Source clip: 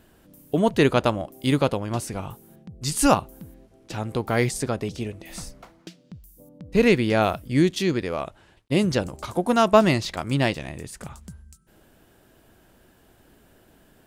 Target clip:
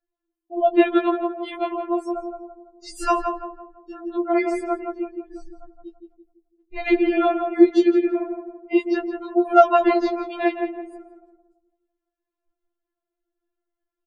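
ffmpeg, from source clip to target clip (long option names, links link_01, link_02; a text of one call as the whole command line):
ffmpeg -i in.wav -filter_complex "[0:a]afftdn=noise_reduction=31:noise_floor=-35,lowpass=frequency=1600:poles=1,asplit=2[link_01][link_02];[link_02]adelay=167,lowpass=frequency=1200:poles=1,volume=-4dB,asplit=2[link_03][link_04];[link_04]adelay=167,lowpass=frequency=1200:poles=1,volume=0.46,asplit=2[link_05][link_06];[link_06]adelay=167,lowpass=frequency=1200:poles=1,volume=0.46,asplit=2[link_07][link_08];[link_08]adelay=167,lowpass=frequency=1200:poles=1,volume=0.46,asplit=2[link_09][link_10];[link_10]adelay=167,lowpass=frequency=1200:poles=1,volume=0.46,asplit=2[link_11][link_12];[link_12]adelay=167,lowpass=frequency=1200:poles=1,volume=0.46[link_13];[link_01][link_03][link_05][link_07][link_09][link_11][link_13]amix=inputs=7:normalize=0,afftfilt=real='re*4*eq(mod(b,16),0)':imag='im*4*eq(mod(b,16),0)':win_size=2048:overlap=0.75,volume=4dB" out.wav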